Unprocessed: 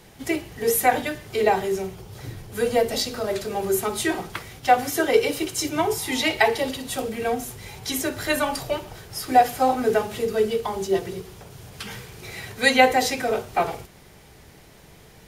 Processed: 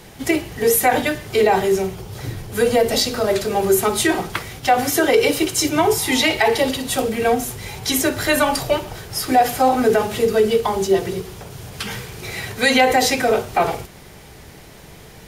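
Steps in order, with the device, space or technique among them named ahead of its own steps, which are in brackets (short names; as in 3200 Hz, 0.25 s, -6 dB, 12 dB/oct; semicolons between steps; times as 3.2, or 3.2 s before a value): clipper into limiter (hard clip -7 dBFS, distortion -29 dB; limiter -14 dBFS, peak gain reduction 7 dB); gain +7.5 dB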